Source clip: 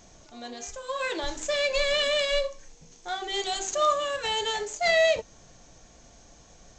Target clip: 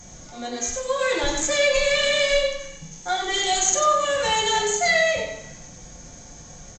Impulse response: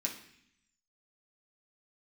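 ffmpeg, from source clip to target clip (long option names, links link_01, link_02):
-filter_complex "[0:a]acompressor=threshold=-25dB:ratio=6,aecho=1:1:94:0.447[link_01];[1:a]atrim=start_sample=2205,asetrate=37485,aresample=44100[link_02];[link_01][link_02]afir=irnorm=-1:irlink=0,volume=5.5dB"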